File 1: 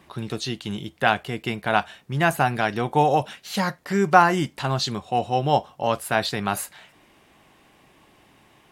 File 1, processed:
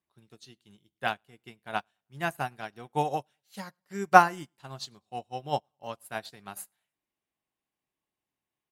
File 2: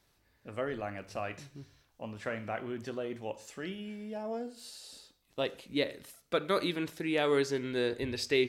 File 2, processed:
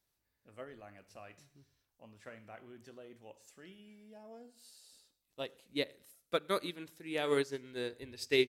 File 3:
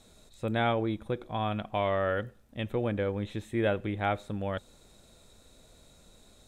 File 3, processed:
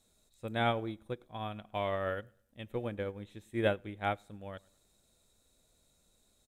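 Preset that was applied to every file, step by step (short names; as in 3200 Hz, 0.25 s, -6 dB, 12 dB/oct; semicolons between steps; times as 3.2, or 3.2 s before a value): high shelf 6800 Hz +11 dB; feedback echo 0.104 s, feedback 39%, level -22.5 dB; upward expander 2.5:1, over -34 dBFS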